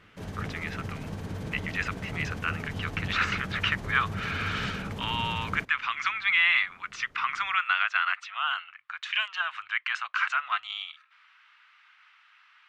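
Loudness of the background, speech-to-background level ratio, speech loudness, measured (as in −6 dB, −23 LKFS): −37.0 LKFS, 8.5 dB, −28.5 LKFS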